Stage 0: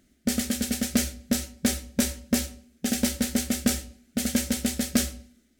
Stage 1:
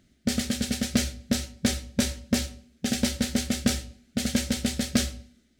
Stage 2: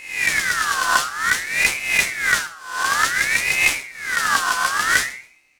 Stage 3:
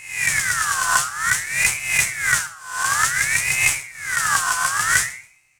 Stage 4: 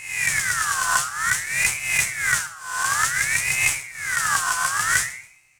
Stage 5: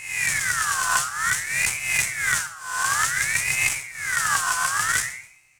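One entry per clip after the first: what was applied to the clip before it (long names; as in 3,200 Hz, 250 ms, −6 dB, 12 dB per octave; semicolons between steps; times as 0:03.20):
graphic EQ with 10 bands 125 Hz +9 dB, 250 Hz −3 dB, 4,000 Hz +4 dB, 16,000 Hz −10 dB
peak hold with a rise ahead of every peak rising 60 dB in 0.65 s; repeating echo 134 ms, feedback 22%, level −22.5 dB; ring modulator whose carrier an LFO sweeps 1,800 Hz, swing 30%, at 0.55 Hz; level +6.5 dB
octave-band graphic EQ 125/250/500/4,000/8,000 Hz +11/−11/−6/−7/+8 dB
in parallel at +1 dB: downward compressor, threshold −28 dBFS, peak gain reduction 15 dB; on the sum: floating-point word with a short mantissa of 4 bits; level −4.5 dB
saturating transformer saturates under 1,400 Hz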